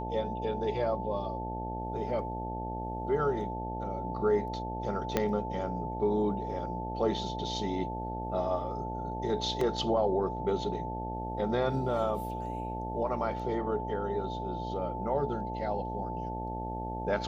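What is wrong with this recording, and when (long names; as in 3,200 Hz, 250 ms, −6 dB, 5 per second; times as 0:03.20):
mains buzz 60 Hz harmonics 14 −38 dBFS
whistle 880 Hz −37 dBFS
0:05.17: click −12 dBFS
0:09.61: drop-out 3.2 ms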